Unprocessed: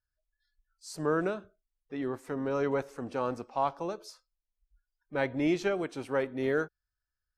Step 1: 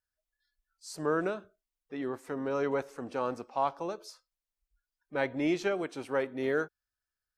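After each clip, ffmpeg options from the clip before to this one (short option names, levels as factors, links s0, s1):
-af "lowshelf=f=130:g=-9.5"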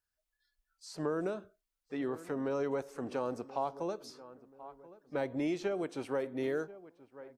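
-filter_complex "[0:a]asplit=2[s0][s1];[s1]adelay=1031,lowpass=f=1100:p=1,volume=0.106,asplit=2[s2][s3];[s3]adelay=1031,lowpass=f=1100:p=1,volume=0.42,asplit=2[s4][s5];[s5]adelay=1031,lowpass=f=1100:p=1,volume=0.42[s6];[s0][s2][s4][s6]amix=inputs=4:normalize=0,acrossover=split=850|5000[s7][s8][s9];[s7]acompressor=threshold=0.0251:ratio=4[s10];[s8]acompressor=threshold=0.00398:ratio=4[s11];[s9]acompressor=threshold=0.00126:ratio=4[s12];[s10][s11][s12]amix=inputs=3:normalize=0,volume=1.12"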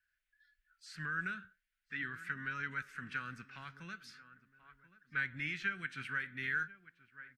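-af "firequalizer=gain_entry='entry(190,0);entry(300,-18);entry(550,-28);entry(830,-24);entry(1500,15);entry(3900,1);entry(5700,-5)':delay=0.05:min_phase=1,flanger=delay=2.6:depth=5.2:regen=84:speed=0.43:shape=sinusoidal,volume=1.41"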